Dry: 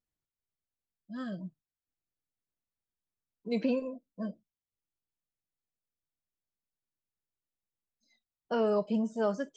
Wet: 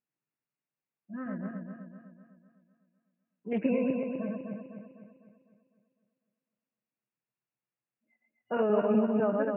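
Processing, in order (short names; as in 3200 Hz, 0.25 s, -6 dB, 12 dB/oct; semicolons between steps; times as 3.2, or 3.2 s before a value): regenerating reverse delay 0.126 s, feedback 69%, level -2 dB; FFT band-pass 110–2900 Hz; 1.21–3.59 Doppler distortion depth 0.2 ms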